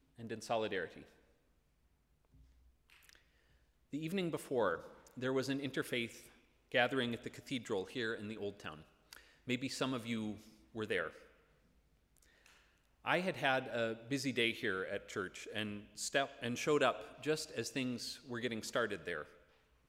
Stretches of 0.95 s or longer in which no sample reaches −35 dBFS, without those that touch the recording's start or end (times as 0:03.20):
0:00.85–0:03.94
0:11.07–0:13.07